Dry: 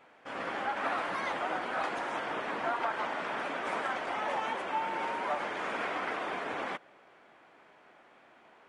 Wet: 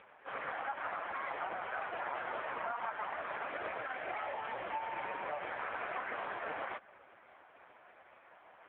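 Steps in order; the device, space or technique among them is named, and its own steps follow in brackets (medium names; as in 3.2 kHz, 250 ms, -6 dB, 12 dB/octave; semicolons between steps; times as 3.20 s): low-pass 5.1 kHz 12 dB/octave; 3.51–5.51 s: dynamic bell 1.1 kHz, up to -6 dB, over -47 dBFS, Q 2.4; voicemail (band-pass 390–3000 Hz; compression 10:1, threshold -37 dBFS, peak gain reduction 9.5 dB; trim +5 dB; AMR-NB 4.75 kbps 8 kHz)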